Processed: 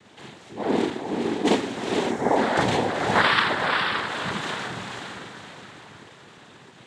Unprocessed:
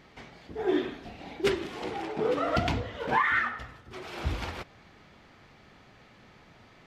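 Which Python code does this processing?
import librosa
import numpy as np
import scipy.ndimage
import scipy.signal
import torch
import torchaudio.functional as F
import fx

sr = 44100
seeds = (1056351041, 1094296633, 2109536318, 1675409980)

y = fx.echo_diffused(x, sr, ms=475, feedback_pct=45, wet_db=-3.5)
y = fx.rev_schroeder(y, sr, rt60_s=0.31, comb_ms=28, drr_db=-1.5)
y = fx.noise_vocoder(y, sr, seeds[0], bands=6)
y = fx.spec_box(y, sr, start_s=2.11, length_s=0.25, low_hz=2300.0, high_hz=5200.0, gain_db=-8)
y = y * 10.0 ** (2.0 / 20.0)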